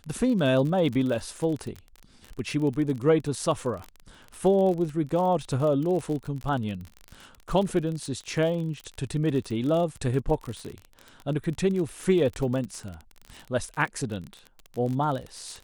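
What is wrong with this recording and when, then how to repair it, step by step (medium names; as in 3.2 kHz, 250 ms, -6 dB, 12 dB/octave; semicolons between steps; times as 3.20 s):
crackle 39 per s -31 dBFS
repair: de-click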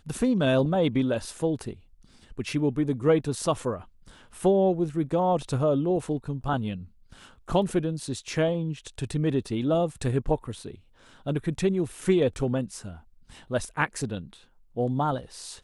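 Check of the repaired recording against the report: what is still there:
nothing left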